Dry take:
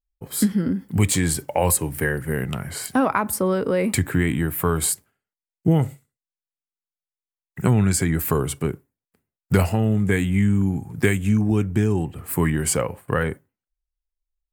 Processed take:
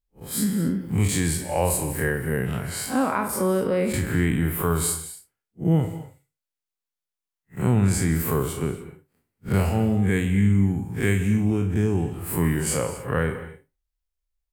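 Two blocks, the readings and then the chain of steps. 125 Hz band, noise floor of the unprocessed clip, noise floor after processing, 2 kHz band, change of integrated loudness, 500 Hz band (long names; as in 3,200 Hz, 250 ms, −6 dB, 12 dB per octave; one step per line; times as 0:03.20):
−1.0 dB, below −85 dBFS, below −85 dBFS, −2.5 dB, −1.5 dB, −1.5 dB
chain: spectrum smeared in time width 91 ms
in parallel at +1.5 dB: downward compressor, threshold −28 dBFS, peak gain reduction 13.5 dB
on the sum: reverb whose tail is shaped and stops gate 280 ms flat, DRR 9 dB
level −3.5 dB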